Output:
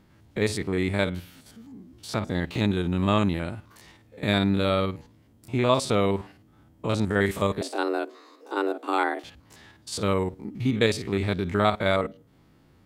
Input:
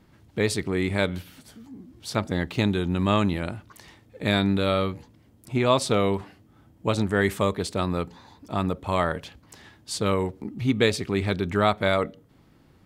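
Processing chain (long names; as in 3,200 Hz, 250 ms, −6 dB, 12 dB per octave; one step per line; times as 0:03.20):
spectrum averaged block by block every 50 ms
0:07.61–0:09.24: frequency shifter +200 Hz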